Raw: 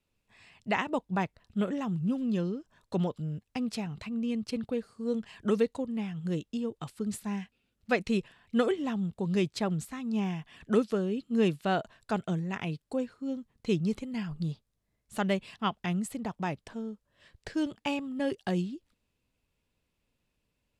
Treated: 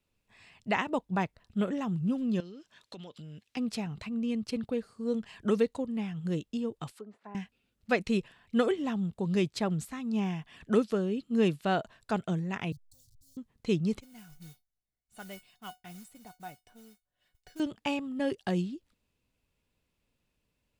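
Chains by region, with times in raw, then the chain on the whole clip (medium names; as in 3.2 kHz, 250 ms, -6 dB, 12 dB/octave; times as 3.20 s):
2.40–3.57 s: frequency weighting D + compression 12:1, threshold -42 dBFS
6.91–7.35 s: low-pass that closes with the level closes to 810 Hz, closed at -32 dBFS + high-pass 570 Hz
12.72–13.37 s: send-on-delta sampling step -49 dBFS + inverse Chebyshev band-stop 230–2600 Hz + treble shelf 5.5 kHz -5 dB
14.00–17.60 s: modulation noise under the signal 13 dB + feedback comb 730 Hz, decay 0.16 s, mix 90%
whole clip: none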